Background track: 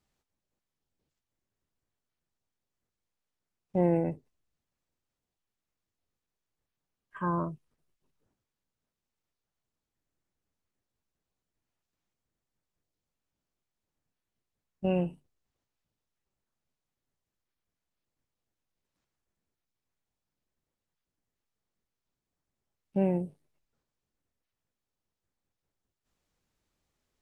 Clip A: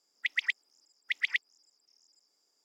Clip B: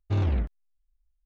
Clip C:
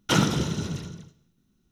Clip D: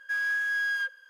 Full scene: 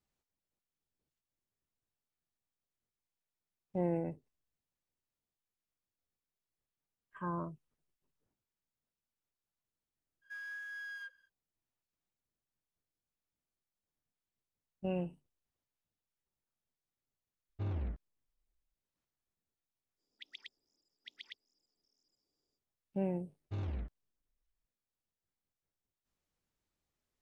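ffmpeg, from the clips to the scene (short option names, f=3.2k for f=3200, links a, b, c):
-filter_complex "[2:a]asplit=2[a][b];[0:a]volume=-8dB[c];[4:a]highpass=580[d];[a]lowpass=f=2.3k:p=1[e];[1:a]firequalizer=gain_entry='entry(270,0);entry(840,-13);entry(2000,-28);entry(3400,-10);entry(7800,-19)':delay=0.05:min_phase=1[f];[d]atrim=end=1.09,asetpts=PTS-STARTPTS,volume=-16.5dB,afade=t=in:d=0.05,afade=t=out:st=1.04:d=0.05,adelay=10210[g];[e]atrim=end=1.25,asetpts=PTS-STARTPTS,volume=-12.5dB,afade=t=in:d=0.004:c=hsin,afade=t=out:st=1.246:d=0.004:c=hsin,adelay=17490[h];[f]atrim=end=2.64,asetpts=PTS-STARTPTS,volume=-1dB,afade=t=in:d=0.05,afade=t=out:st=2.59:d=0.05,adelay=19960[i];[b]atrim=end=1.25,asetpts=PTS-STARTPTS,volume=-14dB,afade=t=in:d=0.004:c=hsin,afade=t=out:st=1.246:d=0.004:c=hsin,adelay=23410[j];[c][g][h][i][j]amix=inputs=5:normalize=0"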